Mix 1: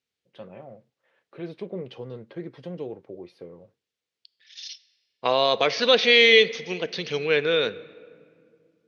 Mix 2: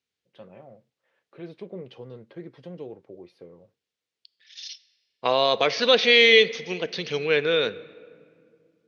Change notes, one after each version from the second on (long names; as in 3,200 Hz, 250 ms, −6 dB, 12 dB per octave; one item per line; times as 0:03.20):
first voice −4.0 dB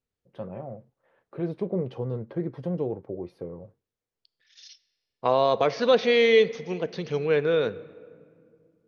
first voice +8.5 dB
master: remove meter weighting curve D